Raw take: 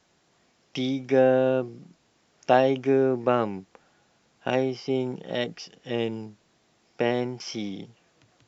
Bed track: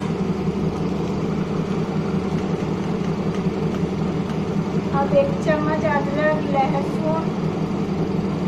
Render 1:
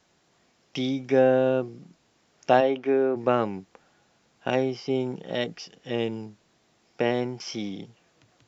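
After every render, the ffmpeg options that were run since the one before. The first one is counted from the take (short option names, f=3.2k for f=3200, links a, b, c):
-filter_complex "[0:a]asplit=3[a][b][c];[a]afade=t=out:st=2.6:d=0.02[d];[b]highpass=270,lowpass=3.6k,afade=t=in:st=2.6:d=0.02,afade=t=out:st=3.15:d=0.02[e];[c]afade=t=in:st=3.15:d=0.02[f];[d][e][f]amix=inputs=3:normalize=0"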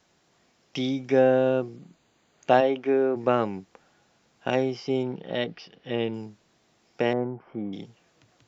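-filter_complex "[0:a]asettb=1/sr,asplit=3[a][b][c];[a]atrim=end=1.764[d];[b]atrim=start=1.76:end=2.51,asetpts=PTS-STARTPTS,afade=t=in:d=0.004:c=qsin,afade=t=out:st=0.746:d=0.004:c=qsin,asuperstop=centerf=5400:order=4:qfactor=4.9[e];[c]atrim=start=2.506[f];[d][e]acrossfade=d=0.004:c1=hsin:c2=qsin[g];[g][f]acrossfade=d=0.004:c1=qsin:c2=hsin,asettb=1/sr,asplit=3[h][i][j];[h]atrim=end=5.034[k];[i]atrim=start=5.03:end=6.14,asetpts=PTS-STARTPTS,afade=t=in:d=0.004:c=qsin,afade=t=out:st=1.106:d=0.004:c=qsin,lowpass=f=4.3k:w=0.5412,lowpass=f=4.3k:w=1.3066[l];[j]atrim=start=6.136[m];[k][l]acrossfade=d=0.004:c1=hsin:c2=qsin[n];[n][m]acrossfade=d=0.004:c1=qsin:c2=hsin,asettb=1/sr,asplit=3[o][p][q];[o]atrim=end=7.134[r];[p]atrim=start=7.13:end=7.73,asetpts=PTS-STARTPTS,afade=t=in:d=0.004:c=qsin,afade=t=out:st=0.596:d=0.004:c=qsin,lowpass=f=1.4k:w=0.5412,lowpass=f=1.4k:w=1.3066[s];[q]atrim=start=7.726[t];[r][s]acrossfade=d=0.004:c1=hsin:c2=qsin[u];[u][t]acrossfade=d=0.004:c1=qsin:c2=hsin"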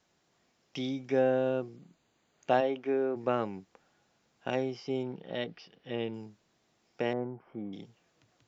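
-af "volume=-7dB"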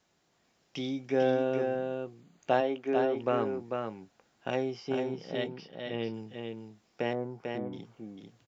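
-filter_complex "[0:a]asplit=2[a][b];[b]adelay=18,volume=-14dB[c];[a][c]amix=inputs=2:normalize=0,asplit=2[d][e];[e]aecho=0:1:445:0.562[f];[d][f]amix=inputs=2:normalize=0"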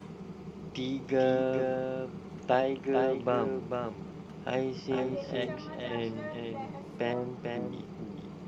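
-filter_complex "[1:a]volume=-21.5dB[a];[0:a][a]amix=inputs=2:normalize=0"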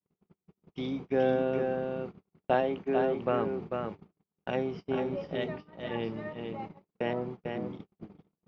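-af "agate=range=-49dB:threshold=-38dB:ratio=16:detection=peak,lowpass=3.4k"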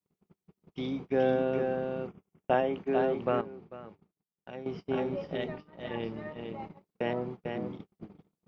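-filter_complex "[0:a]asettb=1/sr,asplit=3[a][b][c];[a]atrim=end=2.074[d];[b]atrim=start=2.07:end=2.74,asetpts=PTS-STARTPTS,afade=t=in:d=0.004:c=qsin,afade=t=out:st=0.666:d=0.004:c=qsin,asuperstop=centerf=4200:order=4:qfactor=2.8[e];[c]atrim=start=2.736[f];[d][e]acrossfade=d=0.004:c1=hsin:c2=qsin[g];[g][f]acrossfade=d=0.004:c1=qsin:c2=hsin,asettb=1/sr,asplit=3[h][i][j];[h]atrim=end=5.374[k];[i]atrim=start=5.37:end=6.7,asetpts=PTS-STARTPTS,afade=t=in:d=0.004:c=qsin,afade=t=out:st=1.326:d=0.004:c=qsin,tremolo=f=150:d=0.4[l];[j]atrim=start=6.696[m];[k][l]acrossfade=d=0.004:c1=hsin:c2=qsin[n];[n][m]acrossfade=d=0.004:c1=qsin:c2=hsin,asplit=3[o][p][q];[o]atrim=end=3.412[r];[p]atrim=start=3.408:end=4.662,asetpts=PTS-STARTPTS,volume=-11.5dB[s];[q]atrim=start=4.658[t];[r][s]acrossfade=d=0.004:c1=hsin:c2=hsin[u];[u][t]acrossfade=d=0.004:c1=hsin:c2=hsin"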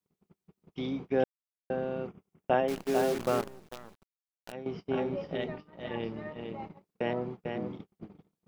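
-filter_complex "[0:a]asettb=1/sr,asplit=3[a][b][c];[a]atrim=end=2.684[d];[b]atrim=start=2.68:end=4.52,asetpts=PTS-STARTPTS,afade=t=in:d=0.004:c=qsin,afade=t=out:st=1.836:d=0.004:c=qsin,acrusher=bits=7:dc=4:mix=0:aa=0.000001[e];[c]atrim=start=4.516[f];[d][e]acrossfade=d=0.004:c1=hsin:c2=qsin[g];[g][f]acrossfade=d=0.004:c1=qsin:c2=hsin,asplit=3[h][i][j];[h]atrim=end=1.24,asetpts=PTS-STARTPTS,afade=t=out:st=1.236:d=0.004:c=hsin[k];[i]atrim=start=1.24:end=1.7,asetpts=PTS-STARTPTS,volume=0[l];[j]atrim=start=1.7,asetpts=PTS-STARTPTS,afade=t=in:d=0.004:c=hsin[m];[k][l][m]concat=n=3:v=0:a=1"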